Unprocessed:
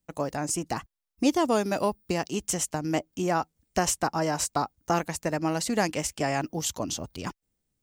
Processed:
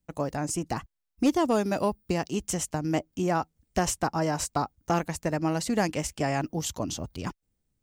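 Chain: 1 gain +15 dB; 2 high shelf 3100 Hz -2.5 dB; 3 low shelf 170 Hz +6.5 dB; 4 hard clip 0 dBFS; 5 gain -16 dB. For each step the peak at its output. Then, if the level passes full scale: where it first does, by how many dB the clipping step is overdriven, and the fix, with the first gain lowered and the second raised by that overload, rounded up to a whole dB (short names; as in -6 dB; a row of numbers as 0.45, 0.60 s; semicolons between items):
+3.5, +3.0, +3.5, 0.0, -16.0 dBFS; step 1, 3.5 dB; step 1 +11 dB, step 5 -12 dB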